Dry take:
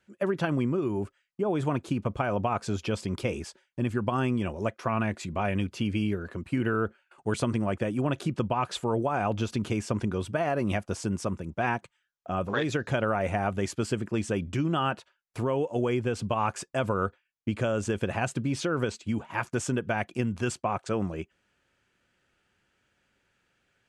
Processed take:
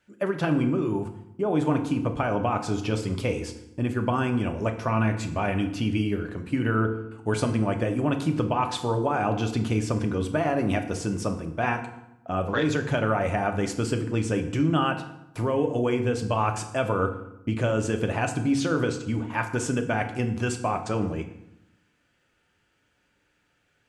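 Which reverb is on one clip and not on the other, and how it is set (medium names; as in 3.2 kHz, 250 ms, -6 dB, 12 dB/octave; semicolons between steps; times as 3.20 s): FDN reverb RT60 0.84 s, low-frequency decay 1.35×, high-frequency decay 0.75×, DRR 5 dB; trim +1.5 dB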